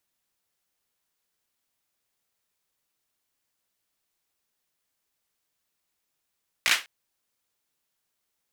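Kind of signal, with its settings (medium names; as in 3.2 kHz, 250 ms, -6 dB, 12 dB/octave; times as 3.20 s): hand clap length 0.20 s, apart 17 ms, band 2.2 kHz, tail 0.24 s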